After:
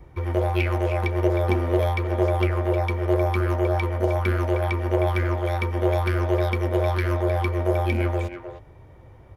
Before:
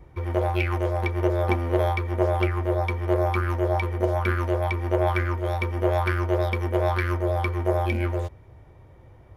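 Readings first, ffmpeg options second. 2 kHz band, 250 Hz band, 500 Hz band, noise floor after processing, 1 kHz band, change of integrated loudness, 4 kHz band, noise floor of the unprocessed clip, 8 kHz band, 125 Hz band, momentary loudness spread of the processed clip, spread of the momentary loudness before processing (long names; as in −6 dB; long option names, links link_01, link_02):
0.0 dB, +2.0 dB, +1.5 dB, −47 dBFS, −0.5 dB, +1.5 dB, +1.5 dB, −50 dBFS, can't be measured, +2.0 dB, 3 LU, 3 LU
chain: -filter_complex "[0:a]acrossover=split=630|2300[link_01][link_02][link_03];[link_02]alimiter=level_in=4dB:limit=-24dB:level=0:latency=1,volume=-4dB[link_04];[link_01][link_04][link_03]amix=inputs=3:normalize=0,asplit=2[link_05][link_06];[link_06]adelay=310,highpass=300,lowpass=3400,asoftclip=type=hard:threshold=-19.5dB,volume=-8dB[link_07];[link_05][link_07]amix=inputs=2:normalize=0,volume=2dB"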